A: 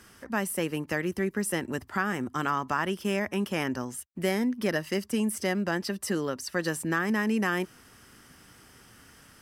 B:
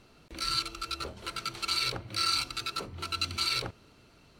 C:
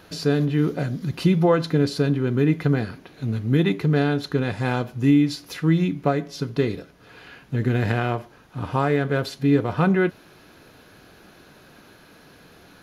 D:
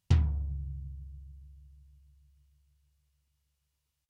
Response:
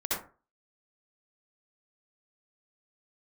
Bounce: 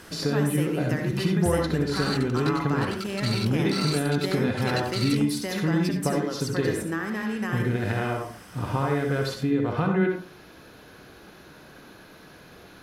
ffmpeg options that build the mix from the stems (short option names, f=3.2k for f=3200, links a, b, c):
-filter_complex "[0:a]acompressor=threshold=-40dB:ratio=2,volume=2dB,asplit=2[a][b];[b]volume=-8dB[c];[1:a]adelay=1550,volume=-3.5dB[d];[2:a]acompressor=threshold=-22dB:ratio=6,volume=-3dB,asplit=2[e][f];[f]volume=-6.5dB[g];[3:a]adelay=1350,volume=-7dB[h];[4:a]atrim=start_sample=2205[i];[c][g]amix=inputs=2:normalize=0[j];[j][i]afir=irnorm=-1:irlink=0[k];[a][d][e][h][k]amix=inputs=5:normalize=0"